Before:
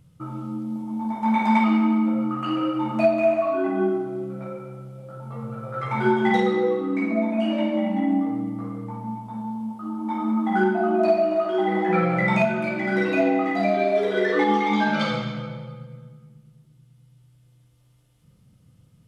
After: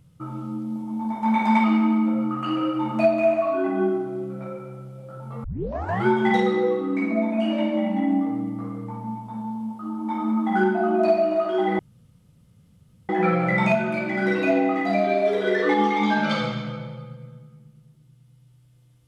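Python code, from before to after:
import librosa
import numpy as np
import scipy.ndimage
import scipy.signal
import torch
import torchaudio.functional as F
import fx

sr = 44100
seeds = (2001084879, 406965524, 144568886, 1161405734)

y = fx.edit(x, sr, fx.tape_start(start_s=5.44, length_s=0.62),
    fx.insert_room_tone(at_s=11.79, length_s=1.3), tone=tone)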